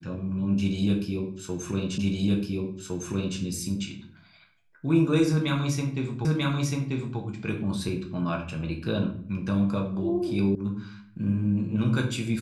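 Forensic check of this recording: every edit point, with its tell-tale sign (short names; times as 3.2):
1.98 repeat of the last 1.41 s
6.25 repeat of the last 0.94 s
10.55 sound cut off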